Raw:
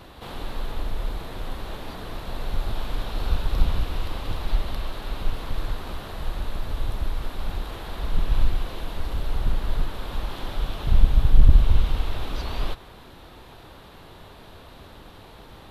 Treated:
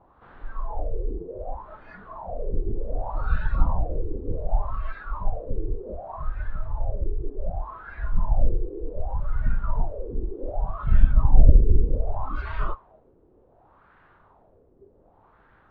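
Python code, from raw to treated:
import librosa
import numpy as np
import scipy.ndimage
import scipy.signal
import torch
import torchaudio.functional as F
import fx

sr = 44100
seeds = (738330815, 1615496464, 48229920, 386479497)

y = fx.echo_banded(x, sr, ms=714, feedback_pct=77, hz=1800.0, wet_db=-9)
y = fx.filter_lfo_lowpass(y, sr, shape='sine', hz=0.66, low_hz=400.0, high_hz=1600.0, q=3.1)
y = fx.noise_reduce_blind(y, sr, reduce_db=15)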